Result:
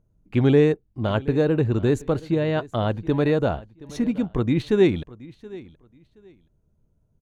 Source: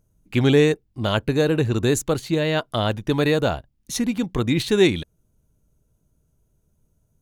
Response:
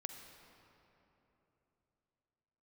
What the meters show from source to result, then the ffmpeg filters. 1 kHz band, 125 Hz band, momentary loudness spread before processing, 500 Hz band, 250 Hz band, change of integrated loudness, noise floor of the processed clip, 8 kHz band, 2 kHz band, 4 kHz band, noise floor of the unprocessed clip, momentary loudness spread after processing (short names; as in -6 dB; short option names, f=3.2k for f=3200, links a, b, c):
-2.5 dB, 0.0 dB, 8 LU, -0.5 dB, 0.0 dB, -1.0 dB, -67 dBFS, under -15 dB, -6.0 dB, -10.5 dB, -68 dBFS, 20 LU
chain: -filter_complex "[0:a]lowpass=f=1.1k:p=1,asplit=2[a][b];[b]aecho=0:1:724|1448:0.1|0.022[c];[a][c]amix=inputs=2:normalize=0"